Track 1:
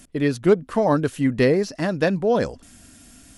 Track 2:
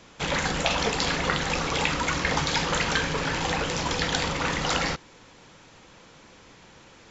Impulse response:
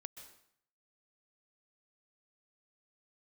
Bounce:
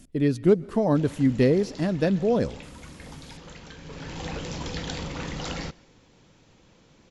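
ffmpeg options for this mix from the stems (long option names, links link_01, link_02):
-filter_complex "[0:a]volume=-0.5dB,asplit=2[link_01][link_02];[link_02]volume=-8dB[link_03];[1:a]adelay=750,volume=-2.5dB,afade=type=in:start_time=3.78:duration=0.55:silence=0.251189,asplit=2[link_04][link_05];[link_05]volume=-10.5dB[link_06];[2:a]atrim=start_sample=2205[link_07];[link_03][link_06]amix=inputs=2:normalize=0[link_08];[link_08][link_07]afir=irnorm=-1:irlink=0[link_09];[link_01][link_04][link_09]amix=inputs=3:normalize=0,lowpass=frequency=3700:poles=1,equalizer=frequency=1300:width_type=o:width=2.7:gain=-10"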